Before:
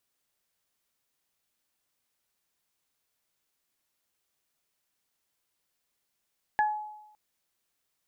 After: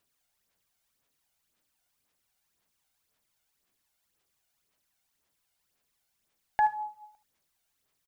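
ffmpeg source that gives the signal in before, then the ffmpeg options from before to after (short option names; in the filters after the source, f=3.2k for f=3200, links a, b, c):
-f lavfi -i "aevalsrc='0.0944*pow(10,-3*t/0.91)*sin(2*PI*848*t)+0.0668*pow(10,-3*t/0.22)*sin(2*PI*1696*t)':d=0.56:s=44100"
-af "aphaser=in_gain=1:out_gain=1:delay=1.4:decay=0.53:speed=1.9:type=sinusoidal,aecho=1:1:76:0.168"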